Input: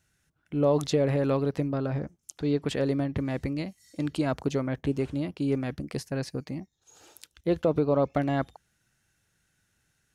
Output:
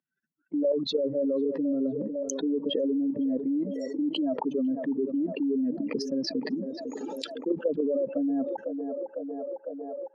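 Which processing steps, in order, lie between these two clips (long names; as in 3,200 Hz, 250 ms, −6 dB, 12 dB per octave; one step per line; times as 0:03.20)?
expanding power law on the bin magnitudes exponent 3.1
downward expander −50 dBFS
parametric band 8,500 Hz −10 dB 0.4 octaves
output level in coarse steps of 11 dB
Chebyshev high-pass filter 240 Hz, order 4
high-frequency loss of the air 90 metres
notch comb filter 740 Hz
feedback echo with a band-pass in the loop 503 ms, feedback 65%, band-pass 750 Hz, level −18 dB
envelope flattener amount 70%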